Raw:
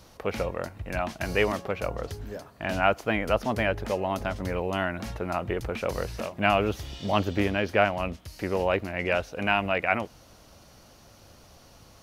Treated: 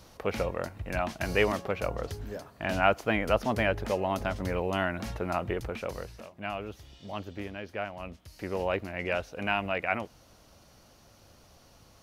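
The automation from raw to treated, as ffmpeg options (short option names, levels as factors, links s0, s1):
-af "volume=2.37,afade=t=out:st=5.38:d=0.83:silence=0.251189,afade=t=in:st=7.88:d=0.76:silence=0.375837"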